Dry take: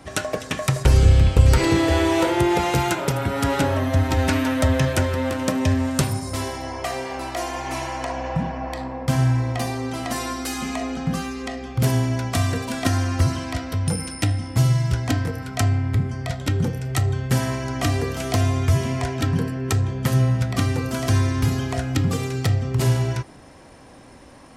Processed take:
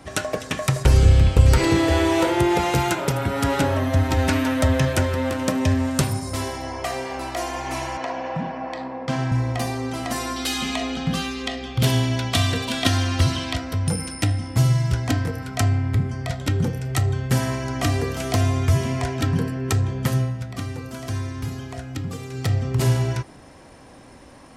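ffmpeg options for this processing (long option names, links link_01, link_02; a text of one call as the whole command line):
ffmpeg -i in.wav -filter_complex "[0:a]asettb=1/sr,asplit=3[link_01][link_02][link_03];[link_01]atrim=end=7.974[link_04];[link_02]atrim=start=7.97:end=9.32,asetpts=PTS-STARTPTS,afade=type=in:duration=0.004:curve=qsin,afade=type=out:start_time=1.346:duration=0.004:curve=qsin,highpass=190,lowpass=5000[link_05];[link_03]atrim=start=9.316[link_06];[link_04][link_05]acrossfade=duration=0.004:curve1=hsin:curve2=qsin[link_07];[link_07][link_06]acrossfade=duration=0.004:curve1=qsin:curve2=hsin,asettb=1/sr,asplit=3[link_08][link_09][link_10];[link_08]atrim=end=10.364[link_11];[link_09]atrim=start=10.36:end=13.56,asetpts=PTS-STARTPTS,afade=type=in:duration=0.004:curve=qsin,afade=type=out:start_time=3.196:duration=0.004:curve=qsin,equalizer=frequency=3400:width=1.6:gain=11.5[link_12];[link_10]atrim=start=13.556[link_13];[link_11][link_12]acrossfade=duration=0.004:curve1=hsin:curve2=qsin[link_14];[link_14][link_13]acrossfade=duration=0.004:curve1=qsin:curve2=hsin,asplit=3[link_15][link_16][link_17];[link_15]atrim=end=20.34,asetpts=PTS-STARTPTS,afade=type=out:start_time=20.03:duration=0.31:silence=0.375837[link_18];[link_16]atrim=start=20.34:end=22.27,asetpts=PTS-STARTPTS,volume=-8.5dB[link_19];[link_17]atrim=start=22.27,asetpts=PTS-STARTPTS,afade=type=in:duration=0.31:silence=0.375837[link_20];[link_18][link_19][link_20]concat=n=3:v=0:a=1" out.wav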